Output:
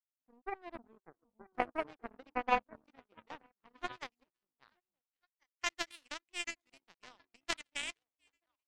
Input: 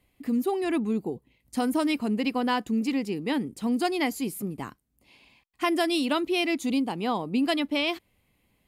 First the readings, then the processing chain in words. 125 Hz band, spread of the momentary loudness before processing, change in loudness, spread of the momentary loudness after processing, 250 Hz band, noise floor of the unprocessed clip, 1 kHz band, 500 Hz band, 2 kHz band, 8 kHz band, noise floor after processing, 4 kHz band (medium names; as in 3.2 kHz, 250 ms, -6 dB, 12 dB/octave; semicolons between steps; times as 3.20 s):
-24.0 dB, 8 LU, -12.5 dB, 24 LU, -26.5 dB, -71 dBFS, -8.5 dB, -15.5 dB, -9.0 dB, -7.0 dB, under -85 dBFS, -12.5 dB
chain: repeats whose band climbs or falls 464 ms, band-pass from 180 Hz, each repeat 1.4 oct, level 0 dB; band-pass sweep 700 Hz -> 2 kHz, 2.26–5.62 s; power-law waveshaper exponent 3; trim +7.5 dB